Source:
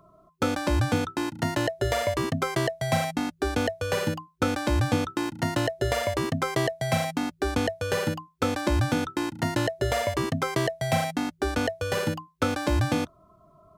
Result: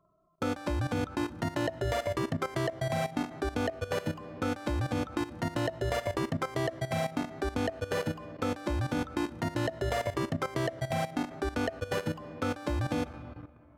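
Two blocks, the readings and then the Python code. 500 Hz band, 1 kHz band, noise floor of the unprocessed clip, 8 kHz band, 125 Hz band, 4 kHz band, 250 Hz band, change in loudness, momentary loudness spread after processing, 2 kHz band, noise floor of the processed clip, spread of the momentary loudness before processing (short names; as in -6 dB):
-5.0 dB, -6.0 dB, -59 dBFS, -9.5 dB, -5.5 dB, -8.0 dB, -5.0 dB, -5.5 dB, 3 LU, -6.5 dB, -56 dBFS, 4 LU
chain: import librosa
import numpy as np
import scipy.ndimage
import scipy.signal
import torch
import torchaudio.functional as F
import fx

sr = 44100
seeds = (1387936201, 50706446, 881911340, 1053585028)

y = fx.high_shelf(x, sr, hz=2900.0, db=-5.0)
y = fx.rev_freeverb(y, sr, rt60_s=4.6, hf_ratio=0.4, predelay_ms=20, drr_db=13.5)
y = fx.level_steps(y, sr, step_db=14)
y = y * 10.0 ** (-1.5 / 20.0)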